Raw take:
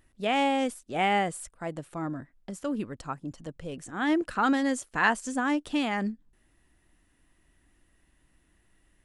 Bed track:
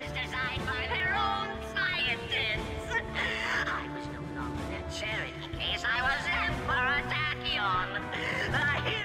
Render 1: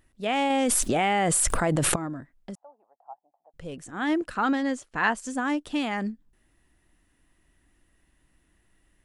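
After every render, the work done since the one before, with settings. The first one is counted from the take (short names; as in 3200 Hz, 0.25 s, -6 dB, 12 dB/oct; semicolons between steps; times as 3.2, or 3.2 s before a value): 0.5–1.96 fast leveller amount 100%; 2.55–3.54 Butterworth band-pass 770 Hz, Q 4.2; 4.43–5.17 air absorption 66 m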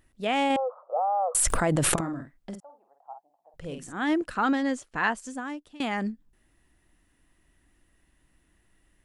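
0.56–1.35 Chebyshev band-pass 490–1300 Hz, order 5; 1.93–3.93 doubler 49 ms -6.5 dB; 4.87–5.8 fade out, to -23 dB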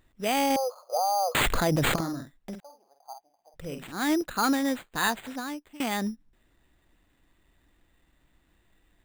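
sample-rate reducer 5500 Hz, jitter 0%; hard clip -17 dBFS, distortion -21 dB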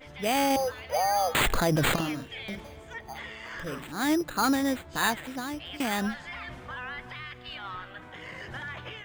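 add bed track -10 dB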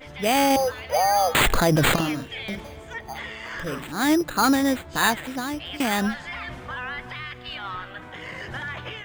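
gain +5.5 dB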